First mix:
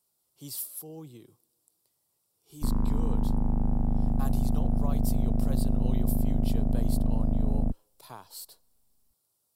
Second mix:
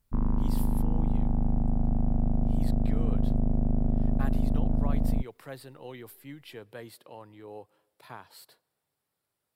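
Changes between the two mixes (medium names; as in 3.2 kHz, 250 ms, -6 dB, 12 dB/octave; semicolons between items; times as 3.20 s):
speech: add FFT filter 1.1 kHz 0 dB, 1.8 kHz +10 dB, 5.9 kHz -11 dB; background: entry -2.50 s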